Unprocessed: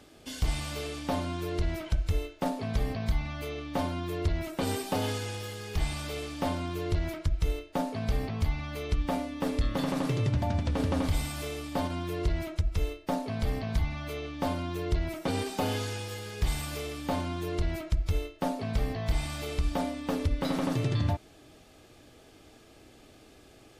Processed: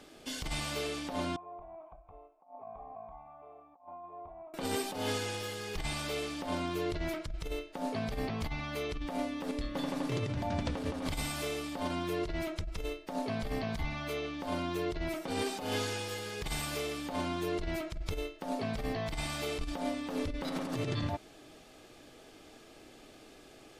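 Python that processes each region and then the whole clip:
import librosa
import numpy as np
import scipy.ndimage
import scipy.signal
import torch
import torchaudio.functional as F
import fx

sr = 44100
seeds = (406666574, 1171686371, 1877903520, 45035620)

y = fx.chain(x, sr, fx.formant_cascade(vowel='a'),
    fx.over_compress(threshold_db=-48.0, ratio=-0.5), at=(1.36, 4.54))
y = fx.chain(y, sr, fx.notch(hz=1300.0, q=15.0),
    fx.comb_fb(f0_hz=290.0, decay_s=0.18, harmonics='all', damping=0.0, mix_pct=60), at=(9.51, 10.12))
y = fx.peak_eq(y, sr, hz=76.0, db=-10.0, octaves=1.8)
y = fx.over_compress(y, sr, threshold_db=-33.0, ratio=-0.5)
y = fx.high_shelf(y, sr, hz=12000.0, db=-4.5)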